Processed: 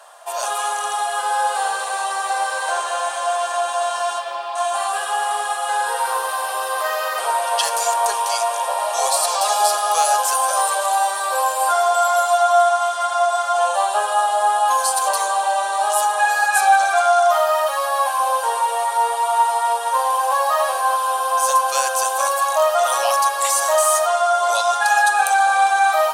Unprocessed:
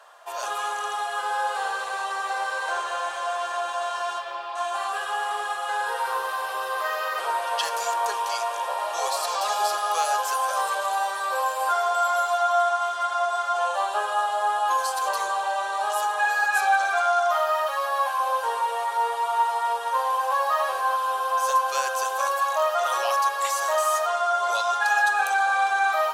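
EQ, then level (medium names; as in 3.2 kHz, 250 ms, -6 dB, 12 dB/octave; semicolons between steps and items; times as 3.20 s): peaking EQ 690 Hz +9.5 dB 1.2 oct; treble shelf 2.4 kHz +11.5 dB; peaking EQ 9.1 kHz +9.5 dB 0.27 oct; -2.0 dB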